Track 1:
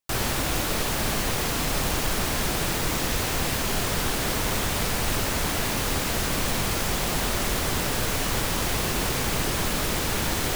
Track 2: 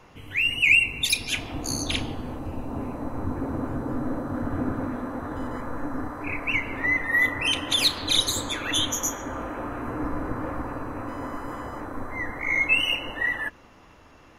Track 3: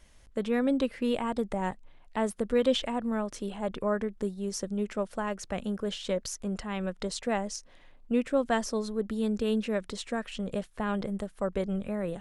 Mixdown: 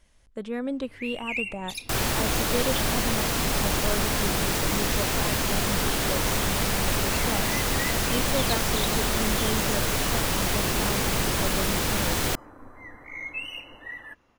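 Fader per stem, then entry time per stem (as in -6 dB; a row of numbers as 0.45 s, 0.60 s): +0.5 dB, -13.0 dB, -3.5 dB; 1.80 s, 0.65 s, 0.00 s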